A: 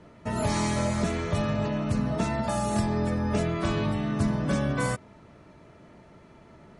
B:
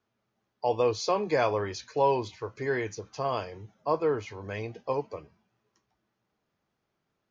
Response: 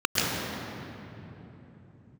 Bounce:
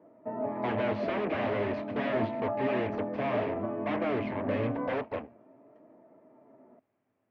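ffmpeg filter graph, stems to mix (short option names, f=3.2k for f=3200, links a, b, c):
-filter_complex "[0:a]lowpass=1.1k,flanger=delay=6.1:depth=5.3:regen=64:speed=0.33:shape=sinusoidal,highpass=260,volume=-1.5dB[a];[1:a]aeval=exprs='0.0398*(abs(mod(val(0)/0.0398+3,4)-2)-1)':c=same,aeval=exprs='0.0398*(cos(1*acos(clip(val(0)/0.0398,-1,1)))-cos(1*PI/2))+0.0178*(cos(8*acos(clip(val(0)/0.0398,-1,1)))-cos(8*PI/2))':c=same,volume=0.5dB[b];[a][b]amix=inputs=2:normalize=0,highpass=100,equalizer=f=110:t=q:w=4:g=5,equalizer=f=160:t=q:w=4:g=-8,equalizer=f=260:t=q:w=4:g=9,equalizer=f=630:t=q:w=4:g=7,equalizer=f=1.4k:t=q:w=4:g=-6,lowpass=f=2.4k:w=0.5412,lowpass=f=2.4k:w=1.3066"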